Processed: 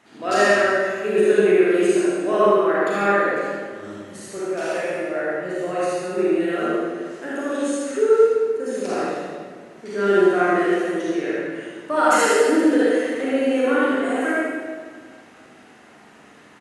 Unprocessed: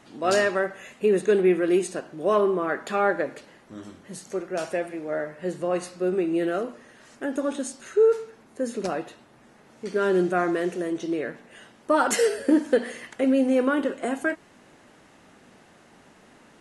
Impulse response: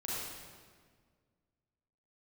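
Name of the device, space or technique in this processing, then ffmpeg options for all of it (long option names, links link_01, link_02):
PA in a hall: -filter_complex "[0:a]highpass=frequency=150:poles=1,equalizer=frequency=2000:width_type=o:width=1.5:gain=4.5,aecho=1:1:80:0.531[link_01];[1:a]atrim=start_sample=2205[link_02];[link_01][link_02]afir=irnorm=-1:irlink=0"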